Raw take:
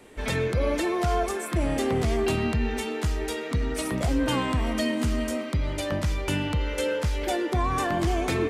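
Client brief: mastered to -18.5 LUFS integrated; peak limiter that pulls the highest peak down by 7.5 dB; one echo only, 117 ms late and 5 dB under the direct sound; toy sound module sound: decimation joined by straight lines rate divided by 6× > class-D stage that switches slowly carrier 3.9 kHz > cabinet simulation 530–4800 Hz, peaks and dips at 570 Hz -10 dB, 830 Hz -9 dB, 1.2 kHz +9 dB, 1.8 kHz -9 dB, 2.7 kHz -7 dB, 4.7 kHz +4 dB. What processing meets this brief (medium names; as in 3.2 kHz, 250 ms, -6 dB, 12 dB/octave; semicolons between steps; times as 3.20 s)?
peak limiter -23 dBFS; delay 117 ms -5 dB; decimation joined by straight lines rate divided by 6×; class-D stage that switches slowly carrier 3.9 kHz; cabinet simulation 530–4800 Hz, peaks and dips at 570 Hz -10 dB, 830 Hz -9 dB, 1.2 kHz +9 dB, 1.8 kHz -9 dB, 2.7 kHz -7 dB, 4.7 kHz +4 dB; trim +18.5 dB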